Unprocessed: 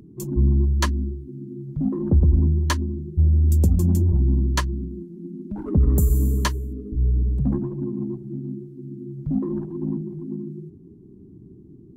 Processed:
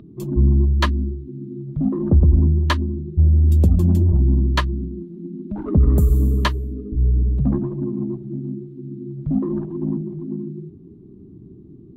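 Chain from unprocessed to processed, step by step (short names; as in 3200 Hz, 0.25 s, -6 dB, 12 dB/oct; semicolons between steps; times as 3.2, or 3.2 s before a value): resonant high shelf 4800 Hz -9.5 dB, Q 1.5; small resonant body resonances 640/1200/3800 Hz, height 7 dB; gain +3 dB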